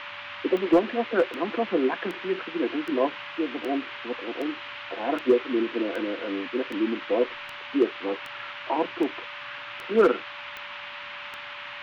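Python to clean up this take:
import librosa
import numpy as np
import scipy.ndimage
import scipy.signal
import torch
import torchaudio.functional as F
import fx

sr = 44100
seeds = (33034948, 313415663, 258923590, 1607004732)

y = fx.fix_declip(x, sr, threshold_db=-12.0)
y = fx.fix_declick_ar(y, sr, threshold=10.0)
y = fx.notch(y, sr, hz=580.0, q=30.0)
y = fx.noise_reduce(y, sr, print_start_s=10.2, print_end_s=10.7, reduce_db=30.0)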